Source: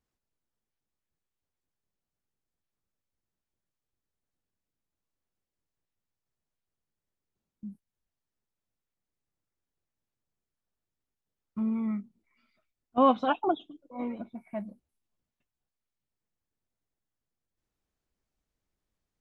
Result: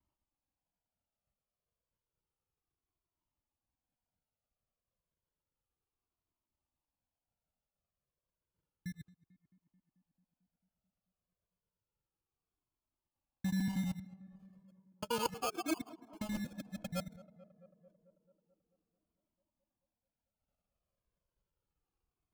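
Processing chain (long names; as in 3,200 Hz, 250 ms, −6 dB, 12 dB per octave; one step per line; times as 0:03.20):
reversed piece by piece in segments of 68 ms
reverb reduction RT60 1.4 s
speed change −14%
reversed playback
downward compressor 6 to 1, threshold −31 dBFS, peak gain reduction 13 dB
reversed playback
notch comb filter 410 Hz
decimation without filtering 23×
dynamic equaliser 1,400 Hz, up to −4 dB, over −54 dBFS, Q 1
on a send: tape delay 220 ms, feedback 82%, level −18 dB, low-pass 1,400 Hz
on the sum: flanger whose copies keep moving one way falling 0.31 Hz
level +5 dB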